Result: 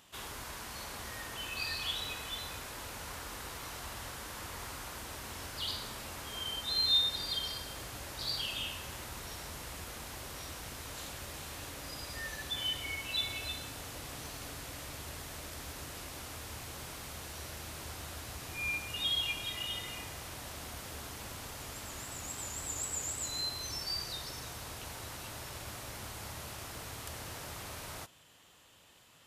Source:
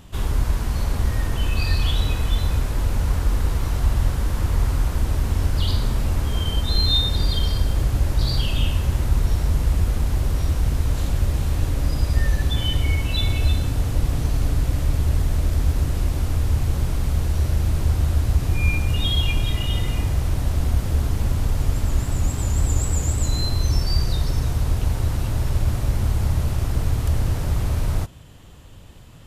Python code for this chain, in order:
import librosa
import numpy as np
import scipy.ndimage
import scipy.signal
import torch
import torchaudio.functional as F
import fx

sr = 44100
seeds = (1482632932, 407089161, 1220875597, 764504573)

y = fx.highpass(x, sr, hz=1200.0, slope=6)
y = y * 10.0 ** (-5.5 / 20.0)